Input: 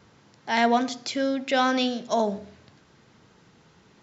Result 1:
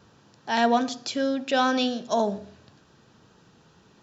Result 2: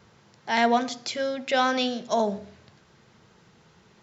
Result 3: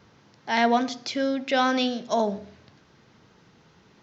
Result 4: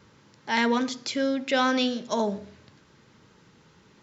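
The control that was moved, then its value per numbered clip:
notch filter, centre frequency: 2,100, 280, 7,200, 710 Hertz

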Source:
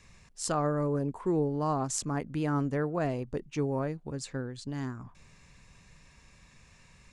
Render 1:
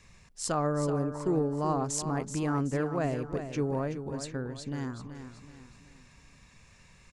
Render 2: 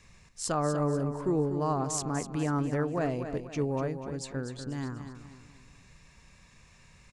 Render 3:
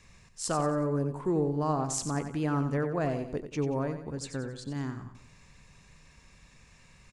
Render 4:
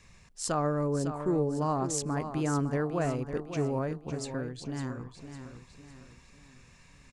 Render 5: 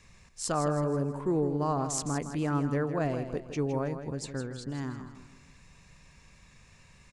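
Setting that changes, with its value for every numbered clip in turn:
repeating echo, delay time: 377, 244, 91, 555, 161 milliseconds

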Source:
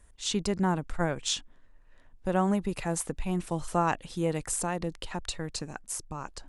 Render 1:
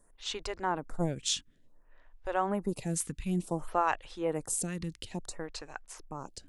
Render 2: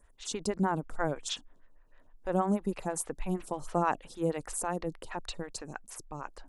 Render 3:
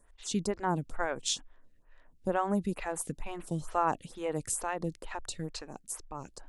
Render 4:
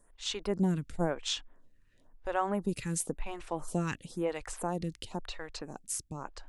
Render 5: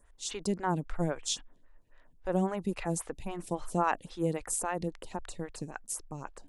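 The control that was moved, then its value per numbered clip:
phaser with staggered stages, speed: 0.57, 6.3, 2.2, 0.97, 3.7 Hertz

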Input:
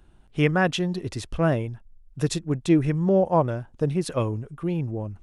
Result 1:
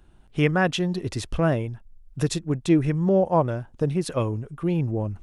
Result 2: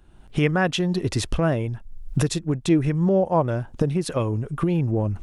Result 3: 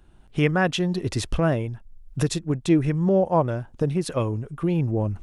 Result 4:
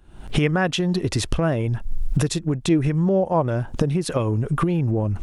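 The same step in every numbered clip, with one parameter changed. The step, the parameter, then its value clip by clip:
camcorder AGC, rising by: 5.1, 33, 13, 81 dB per second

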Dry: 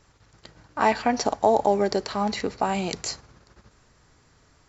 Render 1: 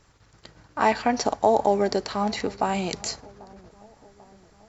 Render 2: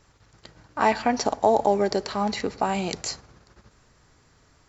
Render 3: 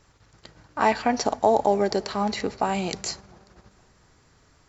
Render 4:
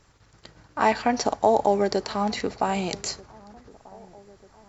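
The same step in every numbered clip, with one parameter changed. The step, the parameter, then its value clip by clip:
delay with a low-pass on its return, delay time: 791, 106, 235, 1,239 milliseconds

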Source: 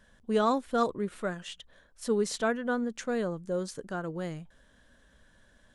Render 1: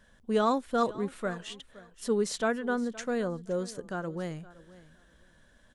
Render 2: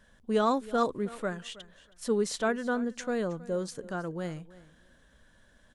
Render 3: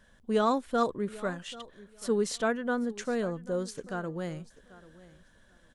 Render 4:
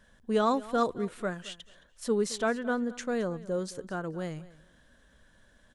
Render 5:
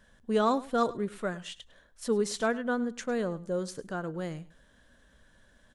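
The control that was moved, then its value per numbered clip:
repeating echo, delay time: 518, 320, 789, 218, 103 milliseconds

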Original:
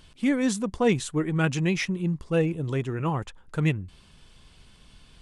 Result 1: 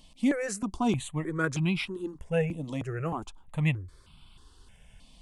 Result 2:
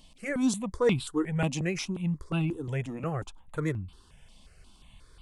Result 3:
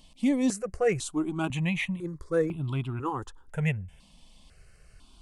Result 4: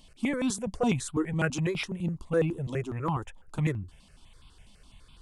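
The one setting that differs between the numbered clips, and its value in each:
step-sequenced phaser, speed: 3.2, 5.6, 2, 12 Hertz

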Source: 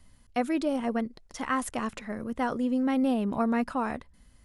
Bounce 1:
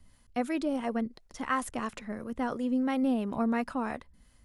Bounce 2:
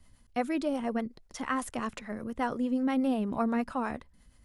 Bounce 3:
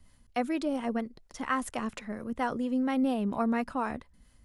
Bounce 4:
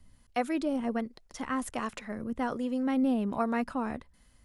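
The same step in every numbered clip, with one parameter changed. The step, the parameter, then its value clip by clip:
two-band tremolo in antiphase, speed: 2.9, 8.4, 4.3, 1.3 Hertz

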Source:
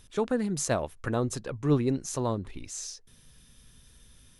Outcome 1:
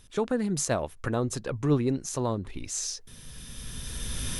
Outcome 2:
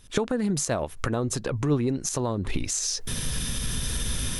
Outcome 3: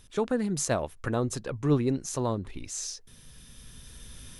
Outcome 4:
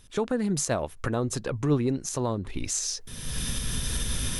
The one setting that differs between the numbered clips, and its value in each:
camcorder AGC, rising by: 13, 88, 5.4, 34 dB per second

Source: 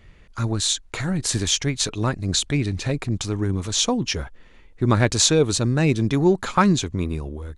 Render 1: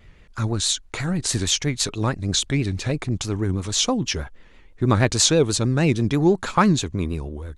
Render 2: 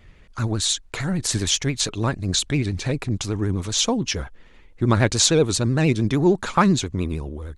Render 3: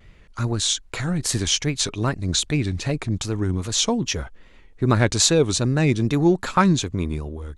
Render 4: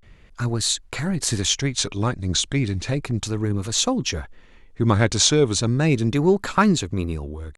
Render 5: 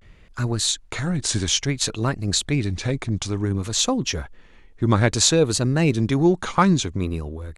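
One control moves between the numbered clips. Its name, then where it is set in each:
pitch vibrato, speed: 6.2, 13, 2.5, 0.34, 0.58 Hertz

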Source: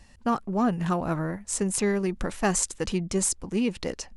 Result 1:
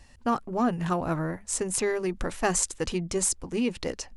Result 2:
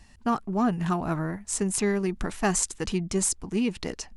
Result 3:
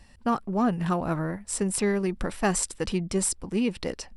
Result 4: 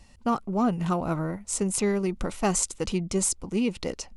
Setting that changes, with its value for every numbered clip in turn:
notch filter, centre frequency: 200, 530, 6,600, 1,700 Hertz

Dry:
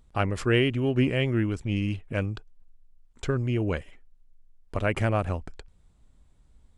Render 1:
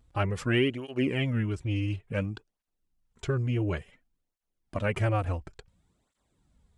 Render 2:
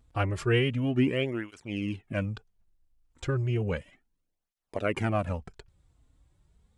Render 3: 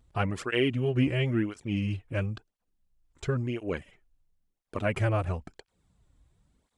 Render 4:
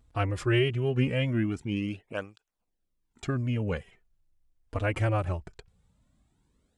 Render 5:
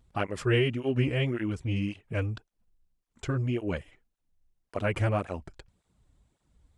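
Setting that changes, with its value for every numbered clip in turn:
through-zero flanger with one copy inverted, nulls at: 0.57, 0.33, 0.97, 0.21, 1.8 Hertz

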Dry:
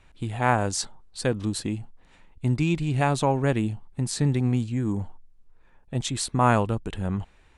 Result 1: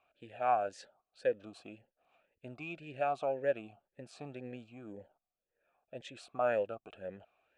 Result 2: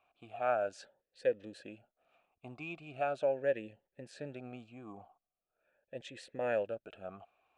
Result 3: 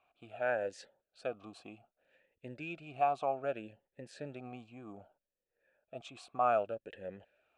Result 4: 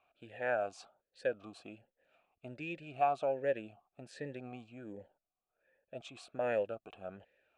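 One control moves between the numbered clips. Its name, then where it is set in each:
formant filter swept between two vowels, speed: 1.9, 0.4, 0.64, 1.3 Hertz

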